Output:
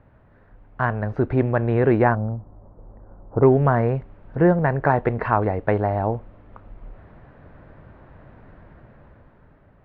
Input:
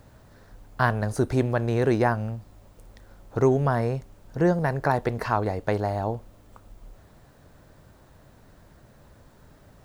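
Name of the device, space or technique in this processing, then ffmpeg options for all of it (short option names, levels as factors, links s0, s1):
action camera in a waterproof case: -filter_complex "[0:a]asettb=1/sr,asplit=3[s0][s1][s2];[s0]atrim=end=2.154[s3];[s1]atrim=start=2.15:end=3.43,asetpts=PTS-STARTPTS,afade=t=in:d=0.004:c=qsin,afade=t=out:st=1.276:d=0.004:c=qsin,lowpass=f=1100:w=0.5412,lowpass=f=1100:w=1.3066[s4];[s2]atrim=start=3.426[s5];[s3][s4]acrossfade=d=0.004:c1=hsin:c2=qsin[s6];[s6][s5]acrossfade=d=0.004:c1=qsin:c2=hsin,lowpass=f=2400:w=0.5412,lowpass=f=2400:w=1.3066,dynaudnorm=f=200:g=11:m=2.82,volume=0.794" -ar 44100 -c:a aac -b:a 64k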